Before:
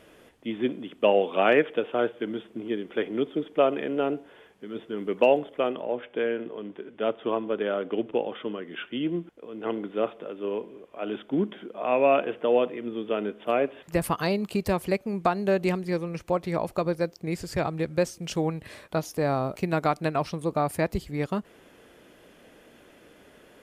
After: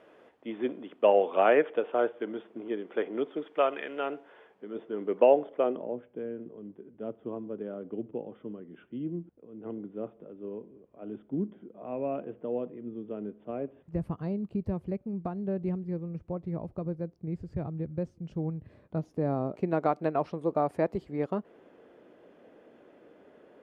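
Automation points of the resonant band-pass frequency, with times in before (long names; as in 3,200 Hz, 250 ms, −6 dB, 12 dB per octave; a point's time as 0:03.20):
resonant band-pass, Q 0.72
0:03.14 730 Hz
0:03.90 1,900 Hz
0:04.68 560 Hz
0:05.60 560 Hz
0:06.09 100 Hz
0:18.68 100 Hz
0:19.82 460 Hz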